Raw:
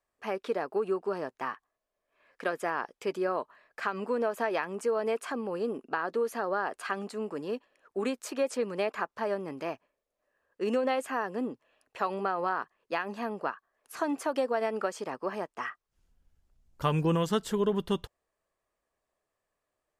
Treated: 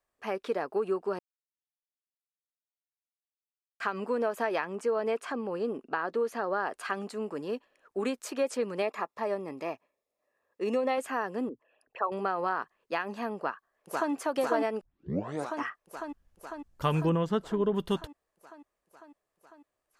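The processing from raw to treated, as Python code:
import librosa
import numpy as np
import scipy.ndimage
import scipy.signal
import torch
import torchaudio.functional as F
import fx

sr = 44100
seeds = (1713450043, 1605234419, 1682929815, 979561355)

y = fx.high_shelf(x, sr, hz=8800.0, db=-10.0, at=(4.61, 6.6))
y = fx.notch_comb(y, sr, f0_hz=1500.0, at=(8.82, 10.98))
y = fx.envelope_sharpen(y, sr, power=2.0, at=(11.49, 12.12))
y = fx.echo_throw(y, sr, start_s=13.37, length_s=0.75, ms=500, feedback_pct=75, wet_db=-1.0)
y = fx.lowpass(y, sr, hz=1500.0, slope=6, at=(17.09, 17.74))
y = fx.edit(y, sr, fx.silence(start_s=1.19, length_s=2.61),
    fx.tape_start(start_s=14.81, length_s=0.74), tone=tone)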